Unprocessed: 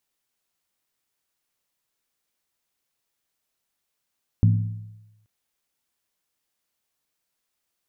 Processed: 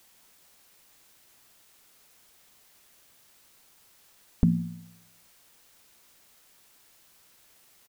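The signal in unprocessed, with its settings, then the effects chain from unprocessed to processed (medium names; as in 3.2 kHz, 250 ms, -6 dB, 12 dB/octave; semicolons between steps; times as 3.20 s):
skin hit length 0.83 s, lowest mode 107 Hz, decay 0.99 s, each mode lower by 7 dB, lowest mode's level -12 dB
comb 4.5 ms, depth 93%; word length cut 10-bit, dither triangular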